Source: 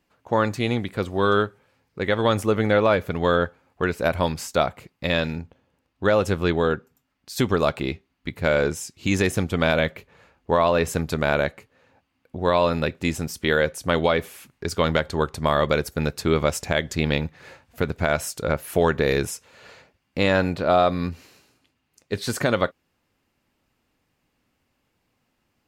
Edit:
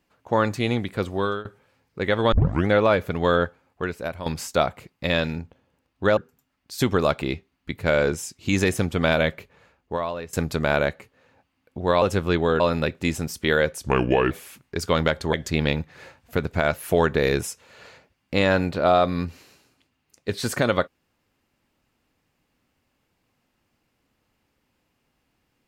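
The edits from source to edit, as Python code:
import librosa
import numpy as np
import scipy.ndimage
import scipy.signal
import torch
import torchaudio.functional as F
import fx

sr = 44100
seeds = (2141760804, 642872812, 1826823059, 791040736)

y = fx.edit(x, sr, fx.fade_out_to(start_s=1.11, length_s=0.34, floor_db=-22.5),
    fx.tape_start(start_s=2.32, length_s=0.36),
    fx.fade_out_to(start_s=3.42, length_s=0.84, floor_db=-13.0),
    fx.move(start_s=6.17, length_s=0.58, to_s=12.6),
    fx.fade_out_to(start_s=9.94, length_s=0.97, floor_db=-19.5),
    fx.speed_span(start_s=13.83, length_s=0.37, speed=0.77),
    fx.cut(start_s=15.22, length_s=1.56),
    fx.cut(start_s=18.19, length_s=0.39), tone=tone)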